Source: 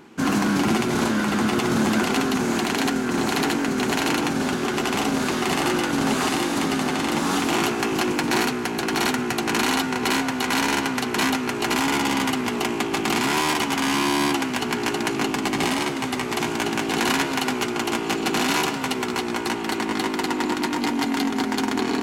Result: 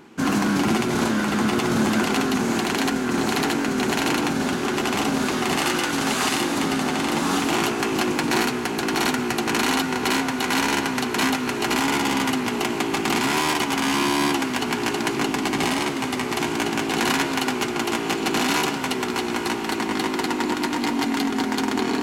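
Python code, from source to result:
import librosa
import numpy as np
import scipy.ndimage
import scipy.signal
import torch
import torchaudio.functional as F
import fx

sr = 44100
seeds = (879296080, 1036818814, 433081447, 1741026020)

y = fx.tilt_shelf(x, sr, db=-3.5, hz=970.0, at=(5.58, 6.42))
y = fx.echo_diffused(y, sr, ms=902, feedback_pct=70, wet_db=-15)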